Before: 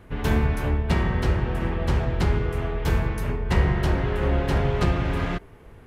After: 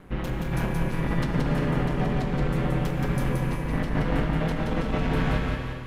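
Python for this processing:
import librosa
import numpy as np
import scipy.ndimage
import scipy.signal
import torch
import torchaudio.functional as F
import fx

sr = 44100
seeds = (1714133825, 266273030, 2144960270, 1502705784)

p1 = fx.over_compress(x, sr, threshold_db=-24.0, ratio=-0.5)
p2 = p1 * np.sin(2.0 * np.pi * 90.0 * np.arange(len(p1)) / sr)
p3 = p2 + fx.echo_feedback(p2, sr, ms=175, feedback_pct=43, wet_db=-3.5, dry=0)
y = fx.rev_gated(p3, sr, seeds[0], gate_ms=440, shape='flat', drr_db=4.5)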